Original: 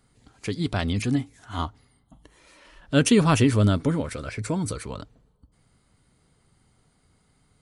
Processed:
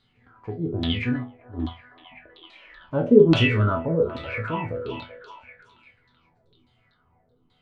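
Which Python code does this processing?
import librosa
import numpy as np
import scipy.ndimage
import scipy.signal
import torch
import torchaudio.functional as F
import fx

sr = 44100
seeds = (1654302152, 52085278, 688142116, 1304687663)

y = fx.resonator_bank(x, sr, root=40, chord='sus4', decay_s=0.3)
y = fx.filter_lfo_lowpass(y, sr, shape='saw_down', hz=1.2, low_hz=290.0, high_hz=4000.0, q=7.4)
y = fx.hpss(y, sr, part='harmonic', gain_db=5)
y = fx.echo_stepped(y, sr, ms=382, hz=760.0, octaves=0.7, feedback_pct=70, wet_db=-9.0)
y = y * 10.0 ** (5.0 / 20.0)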